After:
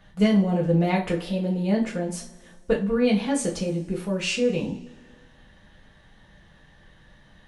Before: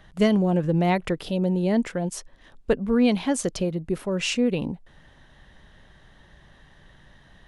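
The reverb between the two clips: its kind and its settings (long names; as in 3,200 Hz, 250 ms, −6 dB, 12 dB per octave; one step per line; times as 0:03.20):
coupled-rooms reverb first 0.3 s, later 1.8 s, from −22 dB, DRR −3.5 dB
level −5.5 dB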